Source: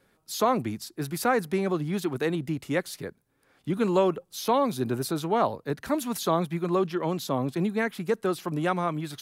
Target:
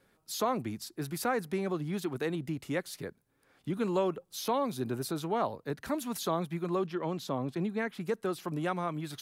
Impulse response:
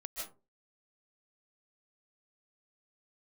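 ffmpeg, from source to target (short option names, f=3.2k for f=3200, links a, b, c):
-filter_complex "[0:a]asettb=1/sr,asplit=3[a][b][c];[a]atrim=end=6.864[d];[b]atrim=start=6.86:end=8.01,asetpts=PTS-STARTPTS,afade=t=in:d=0.004:c=qsin,afade=t=out:st=1.146:d=0.004:c=qsin,highshelf=f=7k:g=-8.5[e];[c]atrim=start=8.006[f];[d][e]acrossfade=d=0.004:c1=hsin:c2=qsin[g];[g][f]acrossfade=d=0.004:c1=qsin:c2=hsin,asplit=2[h][i];[i]acompressor=threshold=-33dB:ratio=6,volume=0dB[j];[h][j]amix=inputs=2:normalize=0,volume=-8.5dB"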